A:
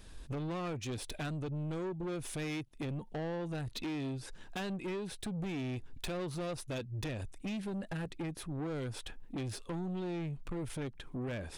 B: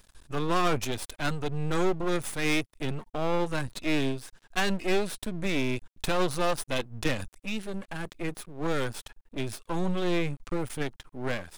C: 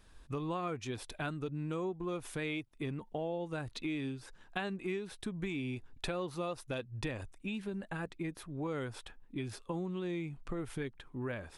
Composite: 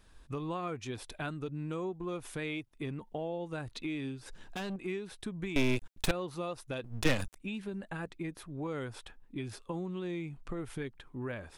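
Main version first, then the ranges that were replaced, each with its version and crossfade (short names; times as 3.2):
C
4.26–4.76 from A
5.56–6.11 from B
6.84–7.36 from B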